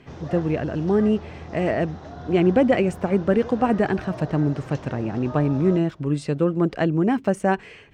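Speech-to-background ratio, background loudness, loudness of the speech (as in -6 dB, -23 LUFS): 15.5 dB, -38.0 LUFS, -22.5 LUFS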